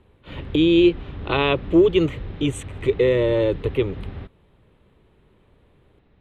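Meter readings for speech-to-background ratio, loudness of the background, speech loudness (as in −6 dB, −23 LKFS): 15.5 dB, −36.0 LKFS, −20.5 LKFS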